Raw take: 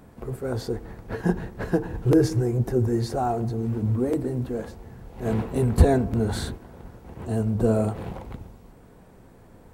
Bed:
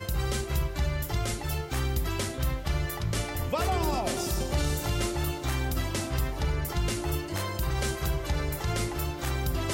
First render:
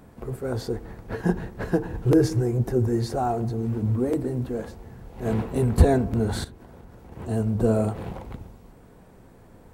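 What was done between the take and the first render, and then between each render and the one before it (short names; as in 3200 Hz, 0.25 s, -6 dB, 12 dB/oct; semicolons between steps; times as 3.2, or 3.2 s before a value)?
6.44–7.12 compressor 5:1, threshold -41 dBFS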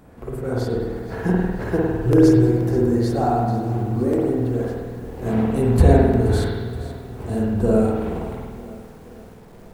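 spring tank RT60 1.3 s, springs 50 ms, chirp 55 ms, DRR -3.5 dB; lo-fi delay 0.475 s, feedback 55%, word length 7-bit, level -15 dB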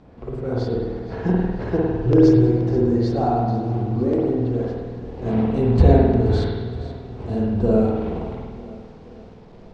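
LPF 5200 Hz 24 dB/oct; bell 1600 Hz -5 dB 0.92 oct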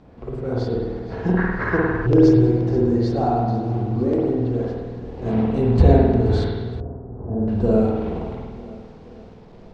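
1.37–2.07 band shelf 1500 Hz +16 dB 1.3 oct; 6.8–7.48 Bessel low-pass 810 Hz, order 8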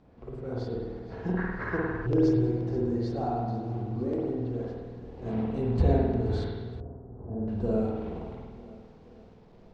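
gain -10 dB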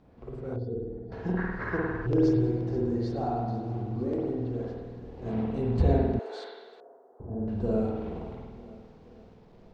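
0.56–1.12 spectral contrast raised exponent 1.6; 6.19–7.2 HPF 490 Hz 24 dB/oct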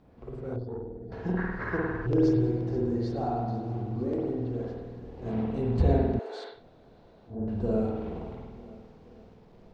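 0.6–1.02 tube stage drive 28 dB, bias 0.55; 6.56–7.33 room tone, crossfade 0.16 s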